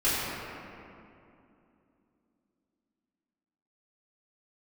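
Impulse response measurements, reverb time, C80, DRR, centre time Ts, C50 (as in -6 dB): 2.7 s, -2.0 dB, -13.5 dB, 177 ms, -3.0 dB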